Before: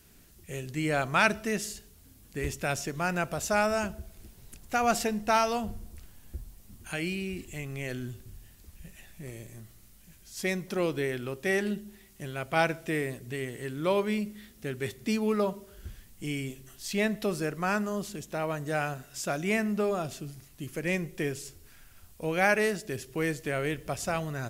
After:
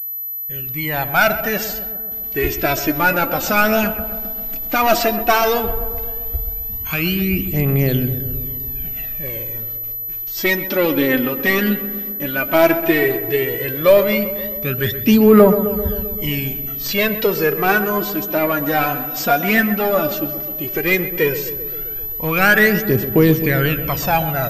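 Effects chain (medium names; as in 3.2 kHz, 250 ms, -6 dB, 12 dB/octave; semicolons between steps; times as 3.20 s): fade-in on the opening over 1.93 s; gate with hold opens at -44 dBFS; bass shelf 190 Hz -3 dB; in parallel at -5 dB: wavefolder -25.5 dBFS; on the sum: phaser 0.13 Hz, delay 4.3 ms, feedback 70%; on a send: filtered feedback delay 131 ms, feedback 72%, low-pass 1.6 kHz, level -11 dB; on the sum: loudness maximiser +9.5 dB; class-D stage that switches slowly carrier 12 kHz; trim -1 dB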